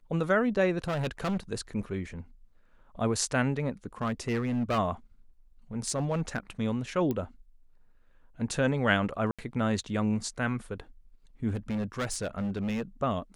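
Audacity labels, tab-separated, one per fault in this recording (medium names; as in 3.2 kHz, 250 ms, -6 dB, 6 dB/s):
0.840000	1.370000	clipped -26.5 dBFS
4.020000	4.790000	clipped -24.5 dBFS
5.880000	6.380000	clipped -23.5 dBFS
7.110000	7.110000	pop -19 dBFS
9.310000	9.390000	dropout 76 ms
11.480000	12.820000	clipped -27.5 dBFS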